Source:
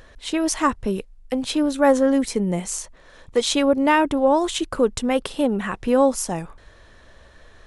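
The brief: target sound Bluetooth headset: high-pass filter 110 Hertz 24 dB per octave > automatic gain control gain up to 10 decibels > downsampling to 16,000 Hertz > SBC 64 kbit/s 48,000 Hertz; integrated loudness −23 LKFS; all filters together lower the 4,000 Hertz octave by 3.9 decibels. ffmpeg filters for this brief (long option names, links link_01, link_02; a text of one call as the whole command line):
ffmpeg -i in.wav -af "highpass=frequency=110:width=0.5412,highpass=frequency=110:width=1.3066,equalizer=frequency=4000:width_type=o:gain=-5,dynaudnorm=maxgain=10dB,aresample=16000,aresample=44100,volume=-1.5dB" -ar 48000 -c:a sbc -b:a 64k out.sbc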